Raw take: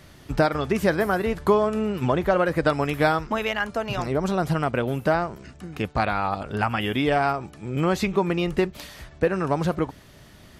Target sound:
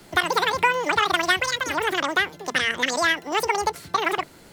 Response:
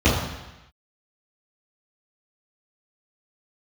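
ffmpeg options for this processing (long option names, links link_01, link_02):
-filter_complex "[0:a]equalizer=frequency=860:width_type=o:width=0.31:gain=6,bandreject=frequency=50:width_type=h:width=6,bandreject=frequency=100:width_type=h:width=6,acrossover=split=190|1100|3300[link_01][link_02][link_03][link_04];[link_01]alimiter=level_in=6.5dB:limit=-24dB:level=0:latency=1,volume=-6.5dB[link_05];[link_05][link_02][link_03][link_04]amix=inputs=4:normalize=0,asetrate=103194,aresample=44100"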